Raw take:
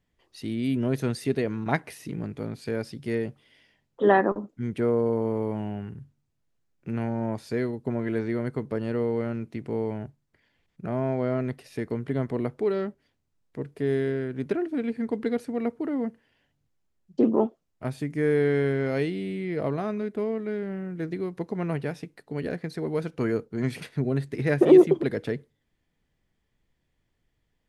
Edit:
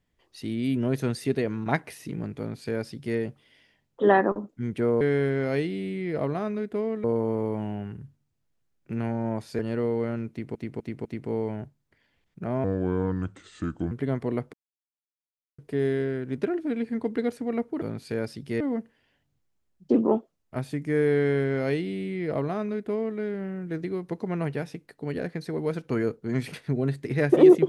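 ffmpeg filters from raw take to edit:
-filter_complex "[0:a]asplit=13[a][b][c][d][e][f][g][h][i][j][k][l][m];[a]atrim=end=5.012[n];[b]atrim=start=18.438:end=20.472[o];[c]atrim=start=5.008:end=7.562[p];[d]atrim=start=8.758:end=9.722[q];[e]atrim=start=9.468:end=9.722[r];[f]atrim=start=9.468:end=9.722[s];[g]atrim=start=9.468:end=11.064[t];[h]atrim=start=11.06:end=11.99,asetpts=PTS-STARTPTS,asetrate=32193,aresample=44100,atrim=end_sample=56182,asetpts=PTS-STARTPTS[u];[i]atrim=start=11.986:end=12.61,asetpts=PTS-STARTPTS,afade=t=out:st=0.62:d=0.004:c=hsin[v];[j]atrim=start=12.61:end=13.66,asetpts=PTS-STARTPTS,volume=0[w];[k]atrim=start=13.66:end=15.892,asetpts=PTS-STARTPTS,afade=t=in:d=0.004:c=hsin[x];[l]atrim=start=2.378:end=3.172[y];[m]atrim=start=15.888[z];[n][o]acrossfade=d=0.004:c1=hsin:c2=hsin[aa];[aa][p]acrossfade=d=0.004:c1=hsin:c2=hsin[ab];[ab][q]acrossfade=d=0.004:c1=hsin:c2=hsin[ac];[ac][r]acrossfade=d=0.004:c1=hsin:c2=hsin[ad];[ad][s]acrossfade=d=0.004:c1=hsin:c2=hsin[ae];[ae][t]acrossfade=d=0.004:c1=hsin:c2=hsin[af];[af][u]acrossfade=d=0.004:c1=hsin:c2=hsin[ag];[v][w][x]concat=n=3:v=0:a=1[ah];[ag][ah]acrossfade=d=0.004:c1=hsin:c2=hsin[ai];[ai][y]acrossfade=d=0.004:c1=hsin:c2=hsin[aj];[aj][z]acrossfade=d=0.004:c1=hsin:c2=hsin"

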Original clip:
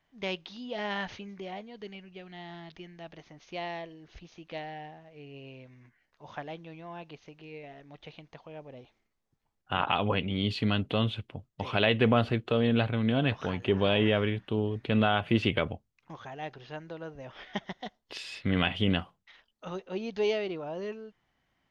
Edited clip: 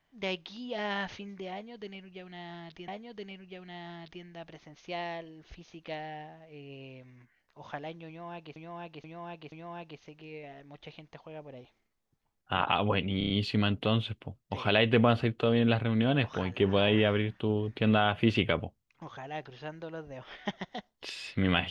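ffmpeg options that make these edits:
-filter_complex "[0:a]asplit=9[a][b][c][d][e][f][g][h][i];[a]atrim=end=2.882[j];[b]atrim=start=1.518:end=7.202[k];[c]atrim=start=6.718:end=7.202[l];[d]atrim=start=6.718:end=7.202[m];[e]atrim=start=6.718:end=10.412[n];[f]atrim=start=10.378:end=10.412[o];[g]atrim=start=10.378:end=10.412[p];[h]atrim=start=10.378:end=10.412[q];[i]atrim=start=10.378[r];[j][k]acrossfade=d=0.004:c1=hsin:c2=hsin[s];[s][l]acrossfade=d=0.004:c1=hsin:c2=hsin[t];[t][m]acrossfade=d=0.004:c1=hsin:c2=hsin[u];[u][n]acrossfade=d=0.004:c1=hsin:c2=hsin[v];[v][o]acrossfade=d=0.004:c1=hsin:c2=hsin[w];[w][p]acrossfade=d=0.004:c1=hsin:c2=hsin[x];[x][q]acrossfade=d=0.004:c1=hsin:c2=hsin[y];[y][r]acrossfade=d=0.004:c1=hsin:c2=hsin"

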